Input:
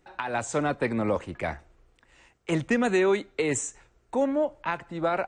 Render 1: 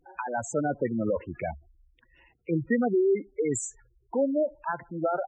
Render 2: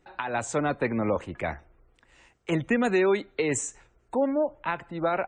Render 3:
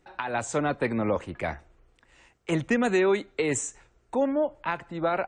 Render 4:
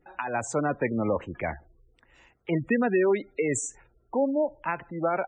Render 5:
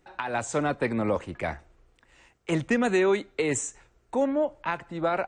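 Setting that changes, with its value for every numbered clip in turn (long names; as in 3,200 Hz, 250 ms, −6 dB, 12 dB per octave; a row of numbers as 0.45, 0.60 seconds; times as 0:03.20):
gate on every frequency bin, under each frame's peak: −10, −35, −45, −20, −60 decibels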